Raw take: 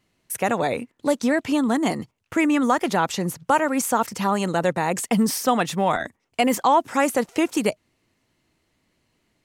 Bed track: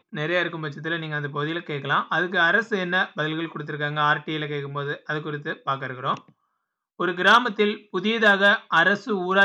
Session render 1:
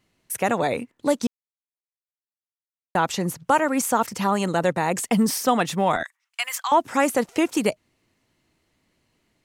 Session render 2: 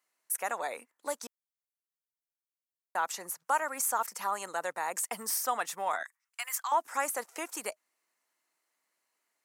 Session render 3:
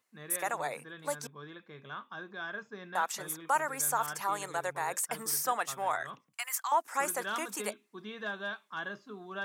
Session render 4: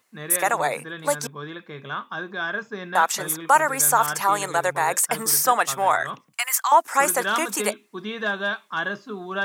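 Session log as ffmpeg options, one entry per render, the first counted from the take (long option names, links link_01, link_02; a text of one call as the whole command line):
ffmpeg -i in.wav -filter_complex "[0:a]asettb=1/sr,asplit=3[link_01][link_02][link_03];[link_01]atrim=end=6.034[link_04];[link_02]atrim=start=6.03:end=6.72,asetpts=PTS-STARTPTS,afade=type=in:duration=0.004:curve=qsin,afade=type=out:start_time=0.686:duration=0.004:curve=qsin,highpass=frequency=1200:width=0.5412,highpass=frequency=1200:width=1.3066[link_05];[link_03]atrim=start=6.716[link_06];[link_04][link_05]acrossfade=duration=0.004:curve1=hsin:curve2=qsin[link_07];[link_07][link_06]acrossfade=duration=0.004:curve1=qsin:curve2=hsin,asplit=3[link_08][link_09][link_10];[link_08]atrim=end=1.27,asetpts=PTS-STARTPTS,afade=type=out:start_time=1.266:duration=0.004:curve=hsin[link_11];[link_09]atrim=start=1.27:end=2.95,asetpts=PTS-STARTPTS,volume=0[link_12];[link_10]atrim=start=2.95,asetpts=PTS-STARTPTS,afade=type=in:duration=0.004:curve=hsin[link_13];[link_11][link_12][link_13]concat=n=3:v=0:a=1" out.wav
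ffmpeg -i in.wav -af "highpass=1200,equalizer=frequency=3200:width_type=o:width=1.8:gain=-14" out.wav
ffmpeg -i in.wav -i bed.wav -filter_complex "[1:a]volume=-20.5dB[link_01];[0:a][link_01]amix=inputs=2:normalize=0" out.wav
ffmpeg -i in.wav -af "volume=12dB" out.wav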